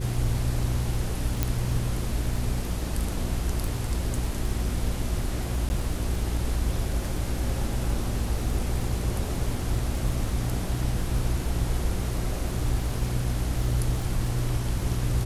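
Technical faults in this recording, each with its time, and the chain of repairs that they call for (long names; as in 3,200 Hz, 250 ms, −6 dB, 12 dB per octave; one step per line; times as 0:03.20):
surface crackle 27 per second −33 dBFS
mains hum 60 Hz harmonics 6 −31 dBFS
0:01.43: click −9 dBFS
0:05.69–0:05.70: drop-out 10 ms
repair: click removal
hum removal 60 Hz, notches 6
repair the gap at 0:05.69, 10 ms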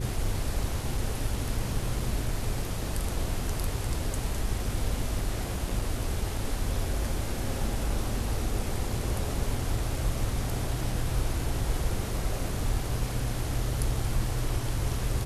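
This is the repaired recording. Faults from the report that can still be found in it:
none of them is left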